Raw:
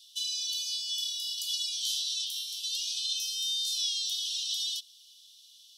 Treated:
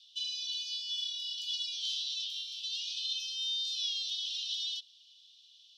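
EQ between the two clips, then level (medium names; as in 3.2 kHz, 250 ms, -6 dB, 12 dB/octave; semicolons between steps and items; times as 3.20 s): distance through air 230 m; +3.5 dB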